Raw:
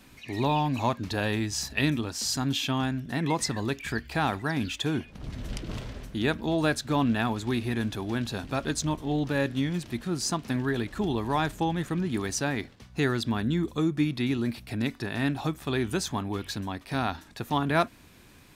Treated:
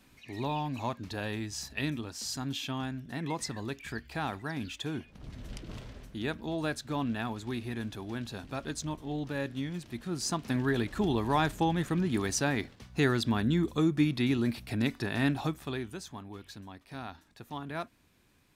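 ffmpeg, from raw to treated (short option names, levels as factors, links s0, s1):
-af "volume=0.944,afade=t=in:st=9.89:d=0.84:silence=0.446684,afade=t=out:st=15.3:d=0.62:silence=0.237137"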